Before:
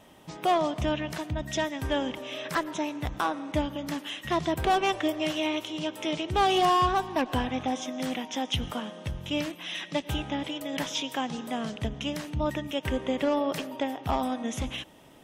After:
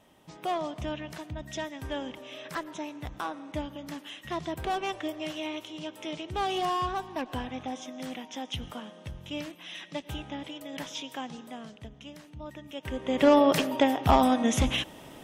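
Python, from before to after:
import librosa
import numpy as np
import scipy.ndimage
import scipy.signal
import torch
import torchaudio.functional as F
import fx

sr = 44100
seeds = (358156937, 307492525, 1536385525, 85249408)

y = fx.gain(x, sr, db=fx.line((11.27, -6.5), (11.87, -13.5), (12.5, -13.5), (13.04, -3.5), (13.27, 7.0)))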